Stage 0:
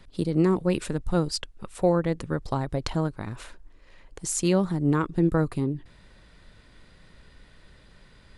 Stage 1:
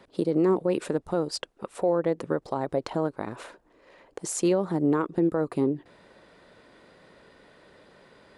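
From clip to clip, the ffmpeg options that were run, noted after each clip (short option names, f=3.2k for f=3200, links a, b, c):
-af "highpass=f=270:p=1,equalizer=f=500:w=0.43:g=13,alimiter=limit=-11dB:level=0:latency=1:release=167,volume=-3.5dB"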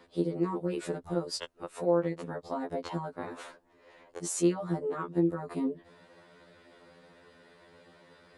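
-af "acompressor=threshold=-26dB:ratio=2,afftfilt=real='re*2*eq(mod(b,4),0)':imag='im*2*eq(mod(b,4),0)':win_size=2048:overlap=0.75"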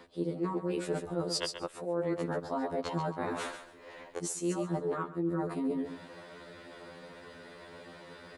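-af "aecho=1:1:136|272|408:0.316|0.0664|0.0139,areverse,acompressor=threshold=-37dB:ratio=8,areverse,volume=7.5dB"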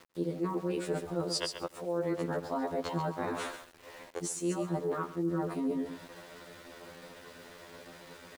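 -af "aeval=exprs='val(0)*gte(abs(val(0)),0.00316)':c=same,aecho=1:1:94:0.0794"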